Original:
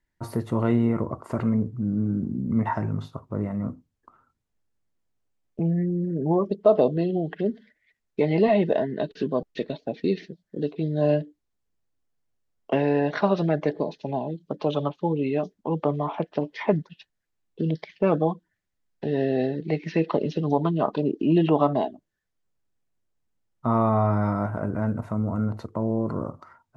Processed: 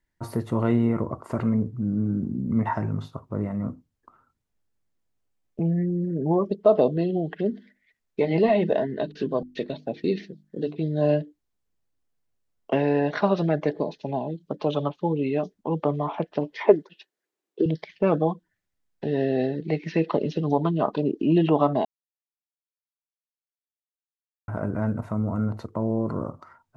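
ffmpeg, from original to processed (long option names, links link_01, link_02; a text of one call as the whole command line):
ffmpeg -i in.wav -filter_complex "[0:a]asplit=3[link_01][link_02][link_03];[link_01]afade=type=out:start_time=7.51:duration=0.02[link_04];[link_02]bandreject=frequency=50:width_type=h:width=6,bandreject=frequency=100:width_type=h:width=6,bandreject=frequency=150:width_type=h:width=6,bandreject=frequency=200:width_type=h:width=6,bandreject=frequency=250:width_type=h:width=6,bandreject=frequency=300:width_type=h:width=6,bandreject=frequency=350:width_type=h:width=6,afade=type=in:start_time=7.51:duration=0.02,afade=type=out:start_time=10.78:duration=0.02[link_05];[link_03]afade=type=in:start_time=10.78:duration=0.02[link_06];[link_04][link_05][link_06]amix=inputs=3:normalize=0,asettb=1/sr,asplit=3[link_07][link_08][link_09];[link_07]atrim=end=16.604[link_10];[link_08]atrim=start=16.6:end=17.66,asetpts=PTS-STARTPTS,afade=type=in:duration=0.004:curve=qsin,afade=type=out:start_time=1.056:duration=0.004:curve=qsin,highpass=frequency=370:width_type=q:width=3.1[link_11];[link_09]atrim=start=17.656[link_12];[link_10][link_11]acrossfade=duration=0.004:curve1=hsin:curve2=qsin[link_13];[link_13][link_12]acrossfade=duration=0.004:curve1=qsin:curve2=hsin,asplit=3[link_14][link_15][link_16];[link_14]atrim=end=21.85,asetpts=PTS-STARTPTS,afade=type=out:start_time=21.846:duration=0.004:curve=hsin[link_17];[link_15]atrim=start=21.85:end=24.48,asetpts=PTS-STARTPTS,volume=0[link_18];[link_16]atrim=start=24.48,asetpts=PTS-STARTPTS,afade=type=in:duration=0.004:curve=hsin[link_19];[link_17][link_18][link_19]concat=n=3:v=0:a=1" out.wav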